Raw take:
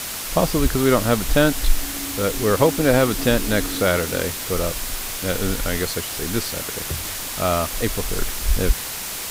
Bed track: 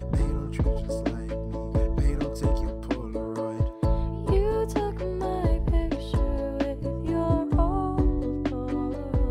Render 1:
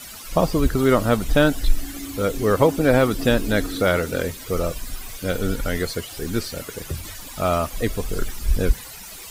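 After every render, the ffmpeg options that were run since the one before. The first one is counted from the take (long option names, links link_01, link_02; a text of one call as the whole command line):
ffmpeg -i in.wav -af "afftdn=noise_reduction=14:noise_floor=-30" out.wav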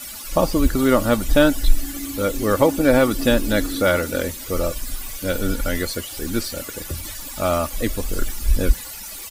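ffmpeg -i in.wav -af "highshelf=frequency=6400:gain=5.5,aecho=1:1:3.5:0.42" out.wav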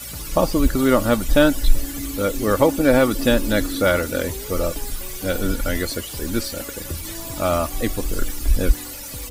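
ffmpeg -i in.wav -i bed.wav -filter_complex "[1:a]volume=-12dB[link_01];[0:a][link_01]amix=inputs=2:normalize=0" out.wav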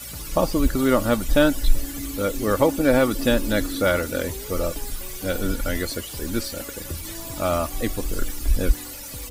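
ffmpeg -i in.wav -af "volume=-2.5dB" out.wav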